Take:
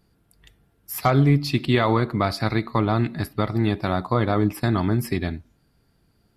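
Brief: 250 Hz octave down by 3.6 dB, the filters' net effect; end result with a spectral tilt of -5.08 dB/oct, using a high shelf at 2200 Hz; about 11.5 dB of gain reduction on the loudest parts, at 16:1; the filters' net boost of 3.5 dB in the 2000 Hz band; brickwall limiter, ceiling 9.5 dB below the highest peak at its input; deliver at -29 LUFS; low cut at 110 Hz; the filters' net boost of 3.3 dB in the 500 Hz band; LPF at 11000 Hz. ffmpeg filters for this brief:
-af "highpass=110,lowpass=11k,equalizer=f=250:t=o:g=-7,equalizer=f=500:t=o:g=6.5,equalizer=f=2k:t=o:g=5.5,highshelf=f=2.2k:g=-3,acompressor=threshold=-24dB:ratio=16,volume=3dB,alimiter=limit=-15dB:level=0:latency=1"

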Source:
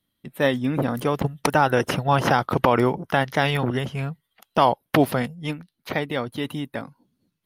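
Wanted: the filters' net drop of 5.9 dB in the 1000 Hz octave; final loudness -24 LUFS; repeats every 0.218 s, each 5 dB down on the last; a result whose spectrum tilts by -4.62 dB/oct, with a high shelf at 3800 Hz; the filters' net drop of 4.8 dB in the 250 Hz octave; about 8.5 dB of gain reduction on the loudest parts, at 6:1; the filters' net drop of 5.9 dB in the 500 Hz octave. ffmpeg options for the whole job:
-af "equalizer=f=250:t=o:g=-4.5,equalizer=f=500:t=o:g=-4.5,equalizer=f=1k:t=o:g=-6.5,highshelf=f=3.8k:g=8.5,acompressor=threshold=-28dB:ratio=6,aecho=1:1:218|436|654|872|1090|1308|1526:0.562|0.315|0.176|0.0988|0.0553|0.031|0.0173,volume=7.5dB"

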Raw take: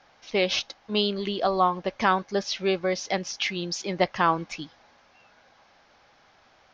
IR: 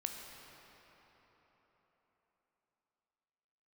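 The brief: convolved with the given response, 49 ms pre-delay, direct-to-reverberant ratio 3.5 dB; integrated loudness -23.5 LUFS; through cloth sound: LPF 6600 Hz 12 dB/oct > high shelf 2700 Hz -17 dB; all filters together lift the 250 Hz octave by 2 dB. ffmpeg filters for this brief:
-filter_complex "[0:a]equalizer=f=250:t=o:g=3.5,asplit=2[a][b];[1:a]atrim=start_sample=2205,adelay=49[c];[b][c]afir=irnorm=-1:irlink=0,volume=-3.5dB[d];[a][d]amix=inputs=2:normalize=0,lowpass=6.6k,highshelf=f=2.7k:g=-17,volume=2.5dB"

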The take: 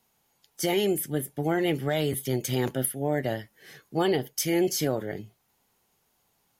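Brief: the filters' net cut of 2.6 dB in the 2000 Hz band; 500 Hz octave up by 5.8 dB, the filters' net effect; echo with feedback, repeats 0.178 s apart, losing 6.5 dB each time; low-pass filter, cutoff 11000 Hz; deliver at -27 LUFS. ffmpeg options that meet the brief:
-af "lowpass=11k,equalizer=f=500:t=o:g=8,equalizer=f=2k:t=o:g=-3.5,aecho=1:1:178|356|534|712|890|1068:0.473|0.222|0.105|0.0491|0.0231|0.0109,volume=-4dB"

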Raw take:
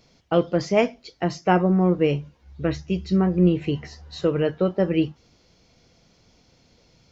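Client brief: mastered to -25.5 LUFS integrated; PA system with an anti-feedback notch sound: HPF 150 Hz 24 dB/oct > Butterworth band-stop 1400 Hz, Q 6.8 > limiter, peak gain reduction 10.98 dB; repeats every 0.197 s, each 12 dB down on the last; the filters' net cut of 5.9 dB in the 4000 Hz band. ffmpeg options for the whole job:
-af "highpass=f=150:w=0.5412,highpass=f=150:w=1.3066,asuperstop=centerf=1400:order=8:qfactor=6.8,equalizer=f=4k:t=o:g=-9,aecho=1:1:197|394|591:0.251|0.0628|0.0157,volume=2dB,alimiter=limit=-14.5dB:level=0:latency=1"

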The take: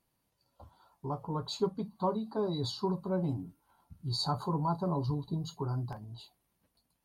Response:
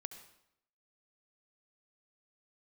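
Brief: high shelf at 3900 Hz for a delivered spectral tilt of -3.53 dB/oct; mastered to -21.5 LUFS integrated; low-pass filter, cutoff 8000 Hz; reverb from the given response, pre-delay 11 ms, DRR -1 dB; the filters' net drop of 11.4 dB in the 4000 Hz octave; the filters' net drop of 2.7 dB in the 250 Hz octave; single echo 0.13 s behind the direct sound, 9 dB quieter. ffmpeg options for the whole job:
-filter_complex "[0:a]lowpass=8k,equalizer=f=250:t=o:g=-4.5,highshelf=f=3.9k:g=-8,equalizer=f=4k:t=o:g=-7.5,aecho=1:1:130:0.355,asplit=2[a][b];[1:a]atrim=start_sample=2205,adelay=11[c];[b][c]afir=irnorm=-1:irlink=0,volume=4.5dB[d];[a][d]amix=inputs=2:normalize=0,volume=11.5dB"

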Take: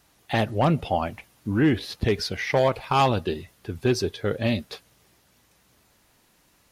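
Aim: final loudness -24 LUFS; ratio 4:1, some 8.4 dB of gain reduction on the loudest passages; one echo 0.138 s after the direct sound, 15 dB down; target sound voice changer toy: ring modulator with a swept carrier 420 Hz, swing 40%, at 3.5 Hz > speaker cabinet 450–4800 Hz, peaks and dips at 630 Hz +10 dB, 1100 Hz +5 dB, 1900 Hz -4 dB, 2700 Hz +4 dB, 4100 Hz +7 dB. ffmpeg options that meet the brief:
-af "acompressor=threshold=-26dB:ratio=4,aecho=1:1:138:0.178,aeval=exprs='val(0)*sin(2*PI*420*n/s+420*0.4/3.5*sin(2*PI*3.5*n/s))':c=same,highpass=450,equalizer=f=630:t=q:w=4:g=10,equalizer=f=1.1k:t=q:w=4:g=5,equalizer=f=1.9k:t=q:w=4:g=-4,equalizer=f=2.7k:t=q:w=4:g=4,equalizer=f=4.1k:t=q:w=4:g=7,lowpass=f=4.8k:w=0.5412,lowpass=f=4.8k:w=1.3066,volume=8dB"

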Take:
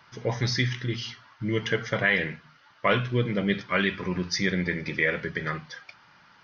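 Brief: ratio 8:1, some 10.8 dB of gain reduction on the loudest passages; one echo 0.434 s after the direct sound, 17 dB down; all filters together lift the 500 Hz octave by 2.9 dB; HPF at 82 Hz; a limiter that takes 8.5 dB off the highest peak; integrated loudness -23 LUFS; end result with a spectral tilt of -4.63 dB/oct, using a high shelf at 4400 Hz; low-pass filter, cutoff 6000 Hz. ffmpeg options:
-af "highpass=82,lowpass=6k,equalizer=f=500:t=o:g=3.5,highshelf=f=4.4k:g=-8,acompressor=threshold=-29dB:ratio=8,alimiter=level_in=0.5dB:limit=-24dB:level=0:latency=1,volume=-0.5dB,aecho=1:1:434:0.141,volume=13.5dB"

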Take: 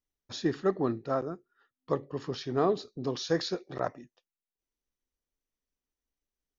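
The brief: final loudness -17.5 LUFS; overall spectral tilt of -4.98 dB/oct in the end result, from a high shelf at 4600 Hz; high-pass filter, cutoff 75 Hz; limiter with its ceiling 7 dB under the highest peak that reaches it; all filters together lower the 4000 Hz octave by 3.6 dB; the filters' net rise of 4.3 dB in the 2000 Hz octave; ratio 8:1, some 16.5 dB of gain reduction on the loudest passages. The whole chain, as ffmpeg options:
-af "highpass=75,equalizer=f=2k:t=o:g=6.5,equalizer=f=4k:t=o:g=-3,highshelf=f=4.6k:g=-5,acompressor=threshold=-39dB:ratio=8,volume=29dB,alimiter=limit=-5dB:level=0:latency=1"

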